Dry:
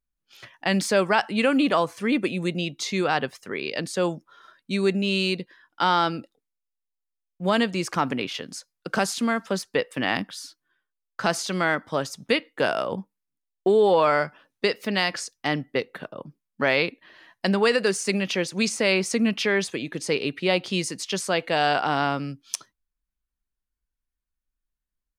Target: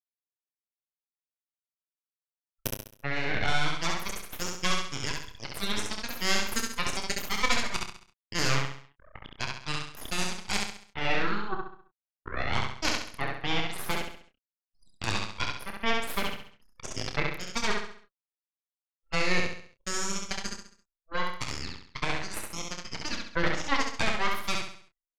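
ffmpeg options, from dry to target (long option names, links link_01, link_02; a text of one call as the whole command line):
ffmpeg -i in.wav -filter_complex "[0:a]areverse,highpass=frequency=550:width=0.5412,highpass=frequency=550:width=1.3066,afftfilt=real='re*gte(hypot(re,im),0.0282)':imag='im*gte(hypot(re,im),0.0282)':win_size=1024:overlap=0.75,equalizer=frequency=10000:width=1.3:gain=-5.5,acompressor=threshold=-30dB:ratio=2,flanger=delay=7.1:depth=2.7:regen=28:speed=0.42:shape=triangular,aeval=exprs='0.211*(cos(1*acos(clip(val(0)/0.211,-1,1)))-cos(1*PI/2))+0.106*(cos(6*acos(clip(val(0)/0.211,-1,1)))-cos(6*PI/2))+0.0376*(cos(7*acos(clip(val(0)/0.211,-1,1)))-cos(7*PI/2))':channel_layout=same,anlmdn=0.0398,asplit=2[link_01][link_02];[link_02]adelay=29,volume=-9.5dB[link_03];[link_01][link_03]amix=inputs=2:normalize=0,aecho=1:1:67|134|201|268|335:0.708|0.297|0.125|0.0525|0.022" out.wav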